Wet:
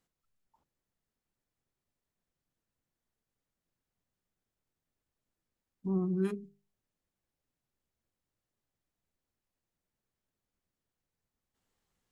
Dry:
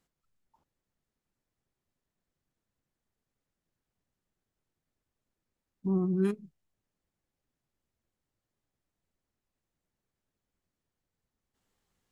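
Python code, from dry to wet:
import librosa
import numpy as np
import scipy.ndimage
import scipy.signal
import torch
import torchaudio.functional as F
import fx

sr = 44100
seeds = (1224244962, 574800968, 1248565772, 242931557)

y = fx.hum_notches(x, sr, base_hz=50, count=8)
y = y * librosa.db_to_amplitude(-2.5)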